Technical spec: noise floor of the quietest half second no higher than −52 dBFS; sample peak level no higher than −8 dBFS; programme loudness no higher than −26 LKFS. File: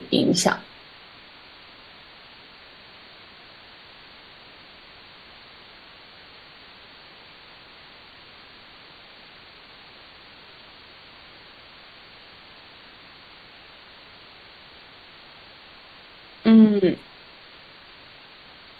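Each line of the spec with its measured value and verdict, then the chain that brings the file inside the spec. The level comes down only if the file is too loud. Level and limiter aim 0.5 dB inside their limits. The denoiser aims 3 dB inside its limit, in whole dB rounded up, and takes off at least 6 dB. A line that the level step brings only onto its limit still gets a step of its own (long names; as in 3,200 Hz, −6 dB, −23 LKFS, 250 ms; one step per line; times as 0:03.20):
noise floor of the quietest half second −47 dBFS: out of spec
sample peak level −4.0 dBFS: out of spec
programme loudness −19.0 LKFS: out of spec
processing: level −7.5 dB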